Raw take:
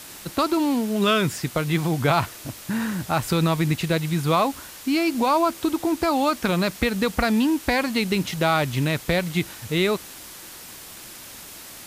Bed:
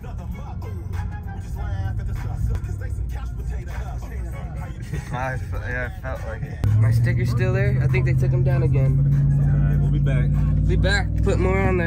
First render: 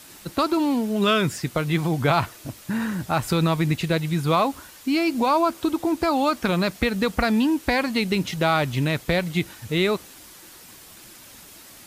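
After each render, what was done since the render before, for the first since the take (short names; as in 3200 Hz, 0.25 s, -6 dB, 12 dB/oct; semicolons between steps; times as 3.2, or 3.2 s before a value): denoiser 6 dB, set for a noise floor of -41 dBFS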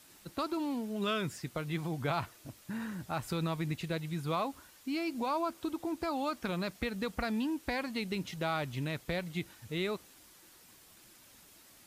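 gain -13 dB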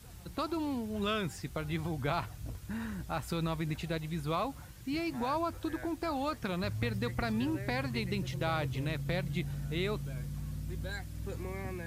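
add bed -20 dB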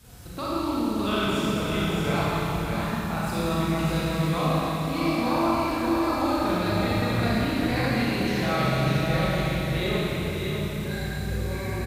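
echo 0.605 s -4.5 dB; Schroeder reverb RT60 3.3 s, combs from 30 ms, DRR -8.5 dB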